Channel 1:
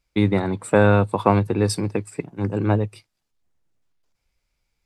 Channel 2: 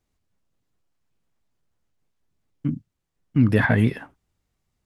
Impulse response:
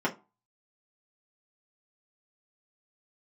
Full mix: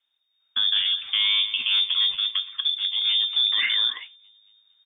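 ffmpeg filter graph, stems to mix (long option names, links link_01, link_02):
-filter_complex "[0:a]asubboost=boost=3.5:cutoff=120,adelay=400,volume=-3dB,asplit=3[link_01][link_02][link_03];[link_02]volume=-15dB[link_04];[link_03]volume=-16dB[link_05];[1:a]volume=0.5dB,asplit=2[link_06][link_07];[link_07]apad=whole_len=231951[link_08];[link_01][link_08]sidechaincompress=threshold=-23dB:ratio=8:attack=24:release=1130[link_09];[2:a]atrim=start_sample=2205[link_10];[link_04][link_10]afir=irnorm=-1:irlink=0[link_11];[link_05]aecho=0:1:229|458|687|916|1145|1374|1603|1832:1|0.52|0.27|0.141|0.0731|0.038|0.0198|0.0103[link_12];[link_09][link_06][link_11][link_12]amix=inputs=4:normalize=0,lowpass=frequency=3100:width_type=q:width=0.5098,lowpass=frequency=3100:width_type=q:width=0.6013,lowpass=frequency=3100:width_type=q:width=0.9,lowpass=frequency=3100:width_type=q:width=2.563,afreqshift=-3700,alimiter=limit=-14dB:level=0:latency=1:release=24"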